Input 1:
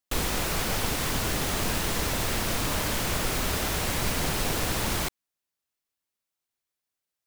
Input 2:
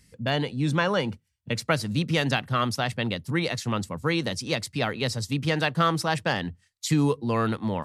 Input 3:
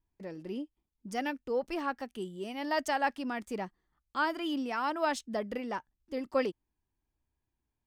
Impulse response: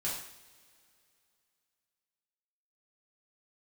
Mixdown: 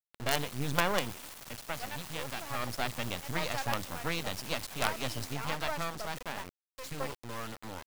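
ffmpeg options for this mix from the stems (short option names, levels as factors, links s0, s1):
-filter_complex "[0:a]adelay=250,volume=0.158[s0];[1:a]lowpass=f=10000:w=0.5412,lowpass=f=10000:w=1.3066,lowshelf=f=250:g=10.5,volume=1.78,afade=t=out:st=1.04:d=0.37:silence=0.334965,afade=t=in:st=2.49:d=0.3:silence=0.398107,afade=t=out:st=5.17:d=0.69:silence=0.421697[s1];[2:a]adelay=650,volume=0.596[s2];[s0][s1][s2]amix=inputs=3:normalize=0,lowshelf=f=490:t=q:w=1.5:g=-8,acrusher=bits=4:dc=4:mix=0:aa=0.000001"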